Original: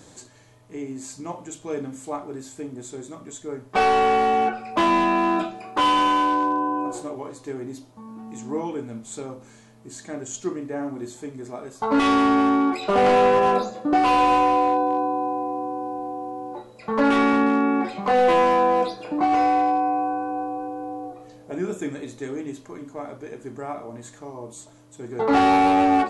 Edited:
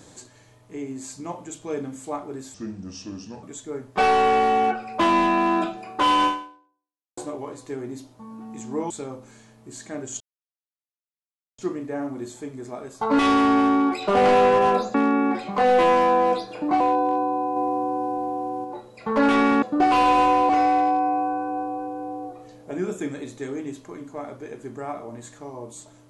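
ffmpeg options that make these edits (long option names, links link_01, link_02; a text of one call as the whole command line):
ffmpeg -i in.wav -filter_complex "[0:a]asplit=12[link_01][link_02][link_03][link_04][link_05][link_06][link_07][link_08][link_09][link_10][link_11][link_12];[link_01]atrim=end=2.544[link_13];[link_02]atrim=start=2.54:end=3.21,asetpts=PTS-STARTPTS,asetrate=33075,aresample=44100[link_14];[link_03]atrim=start=3.206:end=6.95,asetpts=PTS-STARTPTS,afade=type=out:start_time=2.834:duration=0.91:curve=exp[link_15];[link_04]atrim=start=6.95:end=8.682,asetpts=PTS-STARTPTS,afade=type=in:duration=0.004:curve=hsin[link_16];[link_05]atrim=start=9.088:end=10.39,asetpts=PTS-STARTPTS,afade=type=out:start_time=1.298:duration=0.004:curve=hsin,apad=pad_dur=1.38[link_17];[link_06]atrim=start=10.39:end=13.752,asetpts=PTS-STARTPTS,afade=type=in:duration=0.004:curve=hsin[link_18];[link_07]atrim=start=17.438:end=19.302[link_19];[link_08]atrim=start=14.618:end=15.382[link_20];[link_09]atrim=start=15.378:end=16.462,asetpts=PTS-STARTPTS,volume=3.5dB[link_21];[link_10]atrim=start=16.458:end=17.442[link_22];[link_11]atrim=start=13.748:end=14.622[link_23];[link_12]atrim=start=19.298[link_24];[link_13][link_14]acrossfade=duration=0.004:curve1=hsin:curve2=hsin[link_25];[link_15][link_16]concat=n=2:v=0:a=1[link_26];[link_25][link_26]acrossfade=duration=0.004:curve1=hsin:curve2=hsin[link_27];[link_17][link_18]concat=n=2:v=0:a=1[link_28];[link_27][link_28]acrossfade=duration=0.004:curve1=hsin:curve2=hsin[link_29];[link_29][link_19]acrossfade=duration=0.004:curve1=hsin:curve2=hsin[link_30];[link_30][link_20]acrossfade=duration=0.004:curve1=hsin:curve2=hsin[link_31];[link_31][link_21]acrossfade=duration=0.004:curve1=hsin:curve2=hsin[link_32];[link_32][link_22]acrossfade=duration=0.004:curve1=hsin:curve2=hsin[link_33];[link_33][link_23]acrossfade=duration=0.004:curve1=hsin:curve2=hsin[link_34];[link_34][link_24]acrossfade=duration=0.004:curve1=hsin:curve2=hsin" out.wav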